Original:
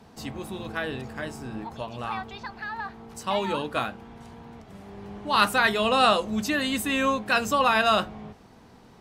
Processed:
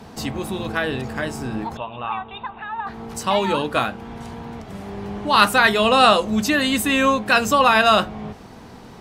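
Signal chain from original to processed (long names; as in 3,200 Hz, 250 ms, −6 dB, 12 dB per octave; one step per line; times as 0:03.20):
in parallel at −1.5 dB: downward compressor, threshold −38 dBFS, peak gain reduction 21 dB
0:01.77–0:02.87: on the sum: Chebyshev low-pass with heavy ripple 3,800 Hz, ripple 9 dB
level +5.5 dB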